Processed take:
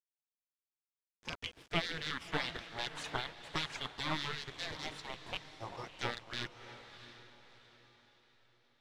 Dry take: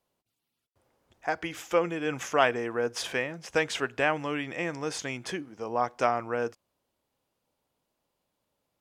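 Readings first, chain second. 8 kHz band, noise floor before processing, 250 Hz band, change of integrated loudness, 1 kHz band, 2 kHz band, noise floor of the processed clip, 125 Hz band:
-11.5 dB, -83 dBFS, -12.0 dB, -10.0 dB, -12.5 dB, -9.0 dB, under -85 dBFS, -5.0 dB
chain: rattle on loud lows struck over -39 dBFS, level -14 dBFS; de-hum 69.5 Hz, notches 8; phase shifter stages 2, 0.23 Hz, lowest notch 230–1700 Hz; reverb removal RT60 1.5 s; dynamic bell 3.1 kHz, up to +6 dB, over -45 dBFS, Q 4; spectral gate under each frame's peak -15 dB weak; harmonic tremolo 5.1 Hz, depth 70%, crossover 2.4 kHz; in parallel at -7 dB: overload inside the chain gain 35 dB; on the sum: companded quantiser 4-bit; tape spacing loss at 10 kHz 22 dB; on a send: echo that smears into a reverb 660 ms, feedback 41%, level -12 dB; on the sum: trim +8 dB

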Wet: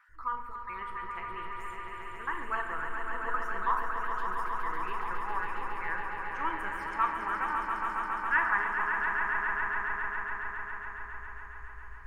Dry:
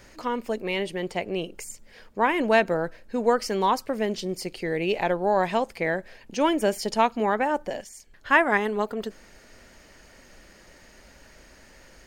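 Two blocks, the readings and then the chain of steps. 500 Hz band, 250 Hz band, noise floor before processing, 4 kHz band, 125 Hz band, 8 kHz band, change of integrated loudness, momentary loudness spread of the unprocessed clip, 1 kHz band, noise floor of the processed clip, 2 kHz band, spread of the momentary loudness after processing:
-20.5 dB, -19.5 dB, -53 dBFS, -17.0 dB, -13.0 dB, under -20 dB, -7.5 dB, 14 LU, -4.0 dB, -43 dBFS, -1.5 dB, 12 LU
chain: random holes in the spectrogram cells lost 27%; FFT filter 110 Hz 0 dB, 170 Hz -26 dB, 390 Hz -20 dB, 600 Hz -30 dB, 1.2 kHz +4 dB, 4.8 kHz -29 dB, 10 kHz -19 dB; on a send: echo with a slow build-up 138 ms, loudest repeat 5, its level -7 dB; on the sum: simulated room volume 320 m³, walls mixed, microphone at 0.69 m; trim -2 dB

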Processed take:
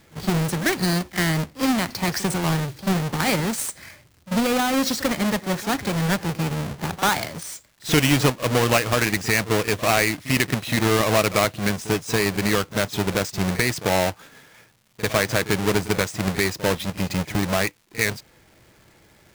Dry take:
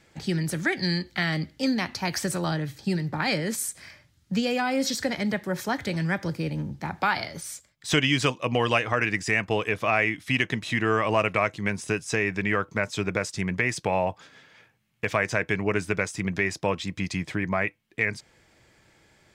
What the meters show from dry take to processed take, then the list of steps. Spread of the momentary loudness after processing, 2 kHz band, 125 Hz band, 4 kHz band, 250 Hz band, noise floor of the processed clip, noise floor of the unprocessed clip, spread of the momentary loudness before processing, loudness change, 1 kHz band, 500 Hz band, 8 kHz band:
7 LU, +1.5 dB, +5.5 dB, +5.5 dB, +5.0 dB, -56 dBFS, -63 dBFS, 7 LU, +4.0 dB, +4.0 dB, +4.0 dB, +8.0 dB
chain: square wave that keeps the level; reverse echo 44 ms -16 dB; crackle 270 per s -45 dBFS

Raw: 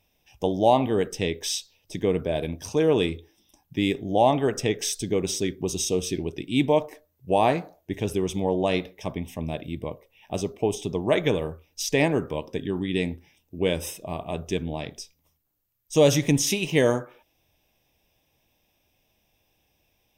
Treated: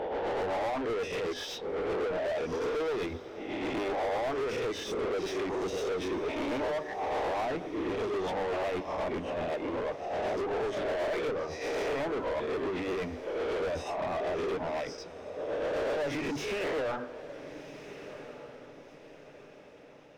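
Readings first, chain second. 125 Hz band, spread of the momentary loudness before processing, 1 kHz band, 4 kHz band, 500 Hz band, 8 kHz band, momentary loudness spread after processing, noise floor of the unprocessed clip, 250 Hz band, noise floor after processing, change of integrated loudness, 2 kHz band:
-15.5 dB, 13 LU, -5.5 dB, -9.5 dB, -5.5 dB, -18.0 dB, 13 LU, -71 dBFS, -10.0 dB, -51 dBFS, -7.5 dB, -4.0 dB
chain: reverse spectral sustain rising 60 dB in 1.12 s; compression 4:1, threshold -20 dBFS, peak gain reduction 8 dB; reverb removal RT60 1.3 s; hum notches 50/100/150/200/250/300 Hz; tremolo triangle 8 Hz, depth 65%; tape spacing loss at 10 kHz 31 dB; overdrive pedal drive 36 dB, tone 1.8 kHz, clips at -15.5 dBFS; echo that smears into a reverb 1443 ms, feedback 41%, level -13 dB; dynamic bell 170 Hz, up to -6 dB, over -43 dBFS, Q 1.4; trim -8.5 dB

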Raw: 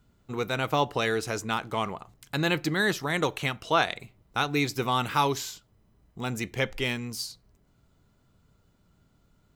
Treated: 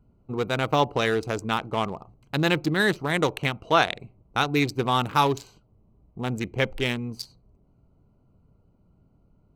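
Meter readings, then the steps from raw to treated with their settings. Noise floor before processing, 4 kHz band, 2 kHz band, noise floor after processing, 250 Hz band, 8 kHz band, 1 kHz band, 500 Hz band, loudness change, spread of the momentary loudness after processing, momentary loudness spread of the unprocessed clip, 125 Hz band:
-66 dBFS, +2.0 dB, +2.0 dB, -63 dBFS, +4.0 dB, -3.5 dB, +3.0 dB, +3.5 dB, +3.0 dB, 12 LU, 10 LU, +4.0 dB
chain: local Wiener filter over 25 samples; trim +4 dB

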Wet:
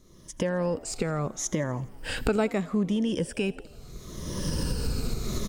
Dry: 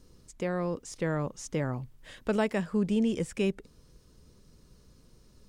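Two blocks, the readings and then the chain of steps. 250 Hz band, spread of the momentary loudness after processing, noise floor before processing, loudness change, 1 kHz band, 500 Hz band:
+2.0 dB, 13 LU, -60 dBFS, +1.5 dB, +2.5 dB, +2.5 dB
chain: drifting ripple filter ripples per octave 1.2, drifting -0.74 Hz, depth 10 dB; recorder AGC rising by 31 dB/s; on a send: frequency-shifting echo 83 ms, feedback 62%, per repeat +67 Hz, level -22.5 dB

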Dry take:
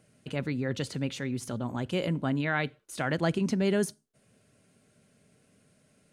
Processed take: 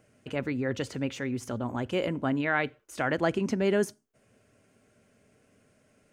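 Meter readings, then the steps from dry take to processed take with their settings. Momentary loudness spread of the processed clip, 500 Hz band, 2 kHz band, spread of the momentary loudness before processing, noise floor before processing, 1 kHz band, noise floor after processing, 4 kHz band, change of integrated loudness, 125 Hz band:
7 LU, +2.5 dB, +2.0 dB, 7 LU, -67 dBFS, +2.5 dB, -67 dBFS, -1.5 dB, +0.5 dB, -3.5 dB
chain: fifteen-band graphic EQ 160 Hz -9 dB, 4 kHz -8 dB, 10 kHz -9 dB; trim +3 dB

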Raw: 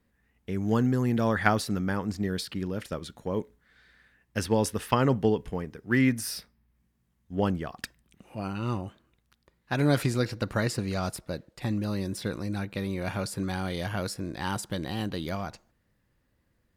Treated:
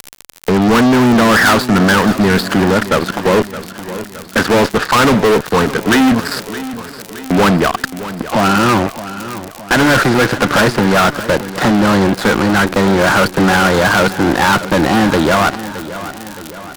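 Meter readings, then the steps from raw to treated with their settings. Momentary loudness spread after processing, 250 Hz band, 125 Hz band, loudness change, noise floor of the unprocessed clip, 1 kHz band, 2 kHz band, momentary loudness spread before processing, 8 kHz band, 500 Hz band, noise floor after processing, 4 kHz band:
15 LU, +16.5 dB, +11.5 dB, +17.0 dB, -72 dBFS, +20.5 dB, +21.0 dB, 12 LU, +16.0 dB, +17.5 dB, -33 dBFS, +20.0 dB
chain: elliptic low-pass 4.7 kHz; gate -53 dBFS, range -24 dB; Bessel high-pass 210 Hz, order 6; resonant high shelf 1.9 kHz -8 dB, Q 3; in parallel at +2.5 dB: upward compressor, threshold -28 dBFS; on the sum: crackle 98 per s -33 dBFS; fuzz box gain 32 dB, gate -39 dBFS; on a send: feedback delay 618 ms, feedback 54%, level -14 dB; on the sum: trim +5 dB

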